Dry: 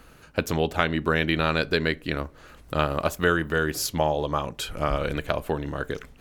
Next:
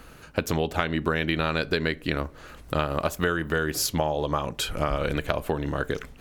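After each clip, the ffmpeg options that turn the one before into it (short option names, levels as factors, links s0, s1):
-af "acompressor=threshold=0.0562:ratio=4,volume=1.5"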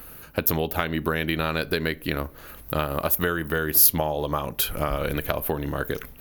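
-af "aexciter=amount=13.2:drive=3.6:freq=11000"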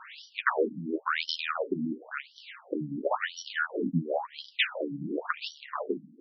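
-af "acrusher=samples=6:mix=1:aa=0.000001,flanger=delay=5.4:depth=6.6:regen=-40:speed=0.38:shape=triangular,afftfilt=real='re*between(b*sr/1024,210*pow(4200/210,0.5+0.5*sin(2*PI*0.95*pts/sr))/1.41,210*pow(4200/210,0.5+0.5*sin(2*PI*0.95*pts/sr))*1.41)':imag='im*between(b*sr/1024,210*pow(4200/210,0.5+0.5*sin(2*PI*0.95*pts/sr))/1.41,210*pow(4200/210,0.5+0.5*sin(2*PI*0.95*pts/sr))*1.41)':win_size=1024:overlap=0.75,volume=2.11"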